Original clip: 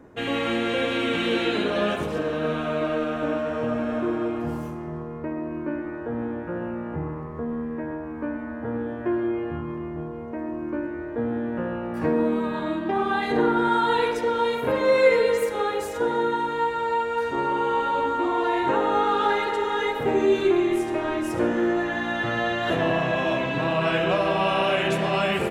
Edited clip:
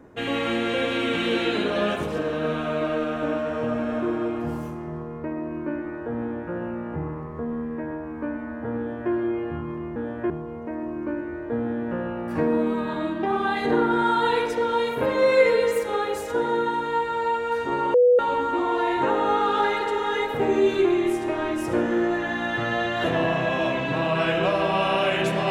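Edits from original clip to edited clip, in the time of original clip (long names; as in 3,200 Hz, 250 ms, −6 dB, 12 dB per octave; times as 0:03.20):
0:08.78–0:09.12: duplicate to 0:09.96
0:17.60–0:17.85: beep over 492 Hz −12.5 dBFS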